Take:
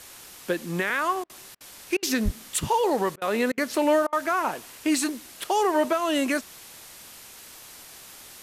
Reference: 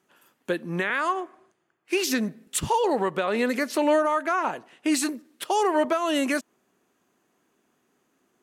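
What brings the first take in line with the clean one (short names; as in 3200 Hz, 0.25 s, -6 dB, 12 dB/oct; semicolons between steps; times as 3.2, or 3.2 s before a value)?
de-plosive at 2.24; interpolate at 1.24/1.55/1.97/3.16/3.52/4.07, 55 ms; noise print and reduce 24 dB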